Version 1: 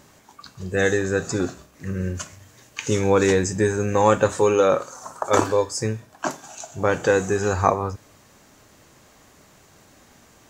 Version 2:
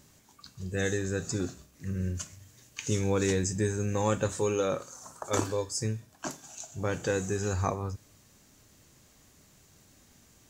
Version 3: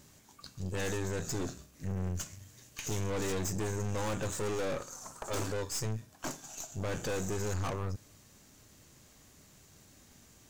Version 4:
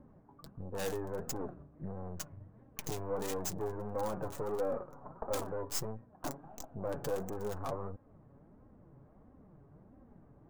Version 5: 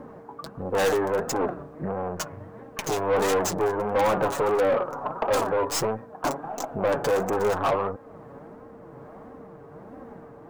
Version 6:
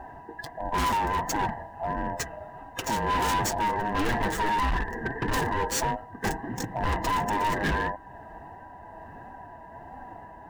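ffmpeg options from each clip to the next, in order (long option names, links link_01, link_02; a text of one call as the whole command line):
ffmpeg -i in.wav -af "equalizer=frequency=900:width=0.36:gain=-10.5,volume=-3dB" out.wav
ffmpeg -i in.wav -af "aeval=exprs='(tanh(63.1*val(0)+0.65)-tanh(0.65))/63.1':channel_layout=same,volume=4dB" out.wav
ffmpeg -i in.wav -filter_complex "[0:a]acrossover=split=500|1100[link_01][link_02][link_03];[link_01]acompressor=threshold=-43dB:ratio=6[link_04];[link_03]acrusher=bits=4:mix=0:aa=0.5[link_05];[link_04][link_02][link_05]amix=inputs=3:normalize=0,flanger=delay=3.7:depth=3.5:regen=37:speed=1.5:shape=sinusoidal,volume=7.5dB" out.wav
ffmpeg -i in.wav -filter_complex "[0:a]tremolo=f=1.2:d=0.28,aeval=exprs='val(0)+0.000447*sin(2*PI*460*n/s)':channel_layout=same,asplit=2[link_01][link_02];[link_02]highpass=frequency=720:poles=1,volume=24dB,asoftclip=type=tanh:threshold=-19dB[link_03];[link_01][link_03]amix=inputs=2:normalize=0,lowpass=frequency=4700:poles=1,volume=-6dB,volume=6dB" out.wav
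ffmpeg -i in.wav -af "afftfilt=real='real(if(lt(b,1008),b+24*(1-2*mod(floor(b/24),2)),b),0)':imag='imag(if(lt(b,1008),b+24*(1-2*mod(floor(b/24),2)),b),0)':win_size=2048:overlap=0.75,volume=22.5dB,asoftclip=hard,volume=-22.5dB" out.wav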